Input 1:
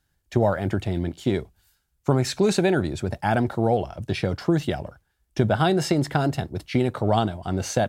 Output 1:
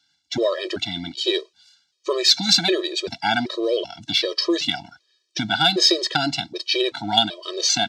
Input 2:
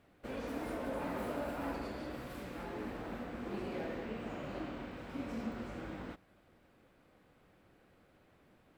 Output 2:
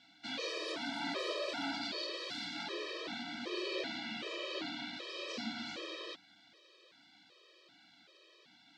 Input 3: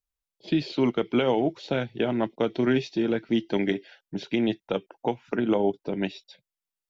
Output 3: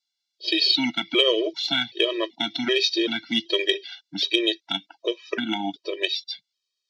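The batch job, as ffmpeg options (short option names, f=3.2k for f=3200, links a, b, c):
-af "highpass=260,equalizer=f=340:t=q:w=4:g=3,equalizer=f=1.5k:t=q:w=4:g=8,equalizer=f=2.7k:t=q:w=4:g=-7,lowpass=f=4.7k:w=0.5412,lowpass=f=4.7k:w=1.3066,aexciter=amount=7.8:drive=8.1:freq=2.4k,afftfilt=real='re*gt(sin(2*PI*1.3*pts/sr)*(1-2*mod(floor(b*sr/1024/330),2)),0)':imag='im*gt(sin(2*PI*1.3*pts/sr)*(1-2*mod(floor(b*sr/1024/330),2)),0)':win_size=1024:overlap=0.75,volume=2dB"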